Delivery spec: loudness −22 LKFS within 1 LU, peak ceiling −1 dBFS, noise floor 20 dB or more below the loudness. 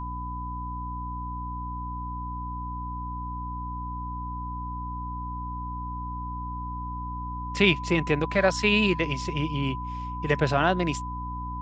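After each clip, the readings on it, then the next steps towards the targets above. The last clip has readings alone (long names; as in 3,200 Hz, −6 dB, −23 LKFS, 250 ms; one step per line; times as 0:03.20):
mains hum 60 Hz; hum harmonics up to 300 Hz; level of the hum −33 dBFS; interfering tone 1,000 Hz; level of the tone −34 dBFS; integrated loudness −28.5 LKFS; sample peak −6.5 dBFS; target loudness −22.0 LKFS
→ mains-hum notches 60/120/180/240/300 Hz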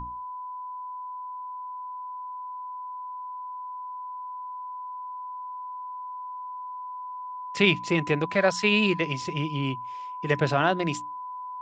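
mains hum none found; interfering tone 1,000 Hz; level of the tone −34 dBFS
→ notch filter 1,000 Hz, Q 30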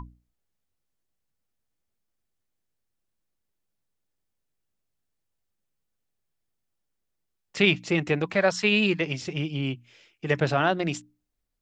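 interfering tone none found; integrated loudness −25.0 LKFS; sample peak −6.0 dBFS; target loudness −22.0 LKFS
→ level +3 dB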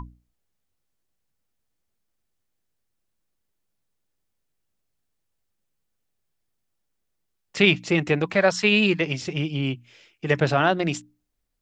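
integrated loudness −22.0 LKFS; sample peak −3.0 dBFS; background noise floor −77 dBFS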